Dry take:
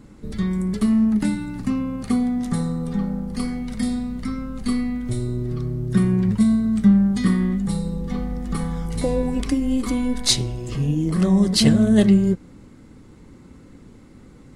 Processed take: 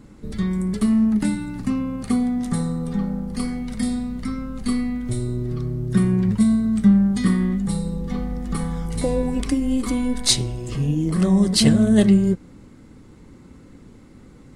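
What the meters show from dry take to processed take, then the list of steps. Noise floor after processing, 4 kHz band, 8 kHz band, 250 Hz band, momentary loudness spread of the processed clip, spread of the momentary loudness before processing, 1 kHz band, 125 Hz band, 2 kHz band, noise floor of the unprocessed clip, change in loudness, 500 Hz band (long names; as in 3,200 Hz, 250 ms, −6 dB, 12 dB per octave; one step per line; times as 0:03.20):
−46 dBFS, 0.0 dB, +1.5 dB, 0.0 dB, 11 LU, 11 LU, 0.0 dB, 0.0 dB, 0.0 dB, −46 dBFS, 0.0 dB, 0.0 dB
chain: dynamic equaliser 8,700 Hz, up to +5 dB, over −56 dBFS, Q 4.1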